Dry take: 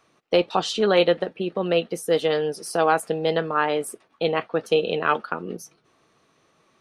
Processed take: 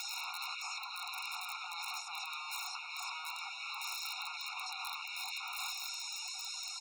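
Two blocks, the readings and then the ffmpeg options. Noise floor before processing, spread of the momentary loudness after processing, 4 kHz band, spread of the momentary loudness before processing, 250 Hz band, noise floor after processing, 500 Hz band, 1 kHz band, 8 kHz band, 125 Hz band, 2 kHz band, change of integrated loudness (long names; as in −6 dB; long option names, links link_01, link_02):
−64 dBFS, 2 LU, −7.5 dB, 8 LU, below −40 dB, −45 dBFS, below −40 dB, −16.5 dB, −4.5 dB, below −40 dB, −11.0 dB, −16.5 dB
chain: -filter_complex "[0:a]aeval=exprs='val(0)+0.5*0.0668*sgn(val(0))':channel_layout=same,asplit=2[link_01][link_02];[link_02]adelay=968,lowpass=frequency=1600:poles=1,volume=-21dB,asplit=2[link_03][link_04];[link_04]adelay=968,lowpass=frequency=1600:poles=1,volume=0.5,asplit=2[link_05][link_06];[link_06]adelay=968,lowpass=frequency=1600:poles=1,volume=0.5,asplit=2[link_07][link_08];[link_08]adelay=968,lowpass=frequency=1600:poles=1,volume=0.5[link_09];[link_01][link_03][link_05][link_07][link_09]amix=inputs=5:normalize=0,adynamicequalizer=threshold=0.0224:dfrequency=330:dqfactor=0.95:tfrequency=330:tqfactor=0.95:attack=5:release=100:ratio=0.375:range=2:mode=boostabove:tftype=bell,areverse,acompressor=threshold=-29dB:ratio=12,areverse,bass=frequency=250:gain=-5,treble=frequency=4000:gain=-3,afftfilt=real='re*lt(hypot(re,im),0.0141)':imag='im*lt(hypot(re,im),0.0141)':win_size=1024:overlap=0.75,lowpass=frequency=5900:width=0.5412,lowpass=frequency=5900:width=1.3066,bandreject=frequency=194.4:width_type=h:width=4,bandreject=frequency=388.8:width_type=h:width=4,bandreject=frequency=583.2:width_type=h:width=4,aeval=exprs='(mod(84.1*val(0)+1,2)-1)/84.1':channel_layout=same,afftfilt=real='re*eq(mod(floor(b*sr/1024/720),2),1)':imag='im*eq(mod(floor(b*sr/1024/720),2),1)':win_size=1024:overlap=0.75,volume=11dB"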